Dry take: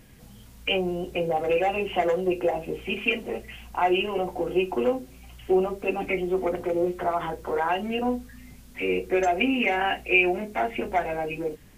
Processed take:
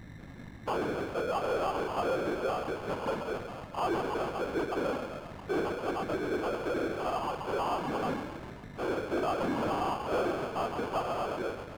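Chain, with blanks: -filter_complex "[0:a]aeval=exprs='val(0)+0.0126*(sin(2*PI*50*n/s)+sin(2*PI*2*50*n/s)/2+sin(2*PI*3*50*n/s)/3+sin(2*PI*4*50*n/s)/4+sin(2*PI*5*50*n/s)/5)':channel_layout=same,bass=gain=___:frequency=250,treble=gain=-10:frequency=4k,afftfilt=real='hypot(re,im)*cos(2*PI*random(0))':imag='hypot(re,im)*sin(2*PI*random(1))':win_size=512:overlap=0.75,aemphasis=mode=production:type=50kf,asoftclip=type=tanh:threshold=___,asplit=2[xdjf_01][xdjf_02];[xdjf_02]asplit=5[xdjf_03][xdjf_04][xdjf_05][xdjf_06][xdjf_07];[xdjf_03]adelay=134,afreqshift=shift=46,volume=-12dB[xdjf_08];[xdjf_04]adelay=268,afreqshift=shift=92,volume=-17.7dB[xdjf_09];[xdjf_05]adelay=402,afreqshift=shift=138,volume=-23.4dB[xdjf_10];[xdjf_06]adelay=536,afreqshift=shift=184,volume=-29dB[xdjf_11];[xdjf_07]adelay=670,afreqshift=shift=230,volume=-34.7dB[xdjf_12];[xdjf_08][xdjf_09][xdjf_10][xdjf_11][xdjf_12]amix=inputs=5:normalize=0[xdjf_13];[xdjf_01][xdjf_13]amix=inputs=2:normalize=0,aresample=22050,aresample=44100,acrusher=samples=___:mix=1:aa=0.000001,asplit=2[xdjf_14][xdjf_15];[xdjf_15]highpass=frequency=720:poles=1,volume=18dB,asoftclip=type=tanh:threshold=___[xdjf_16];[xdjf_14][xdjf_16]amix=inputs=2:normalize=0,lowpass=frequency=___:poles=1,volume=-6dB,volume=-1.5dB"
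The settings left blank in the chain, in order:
1, -22.5dB, 23, -20.5dB, 1.2k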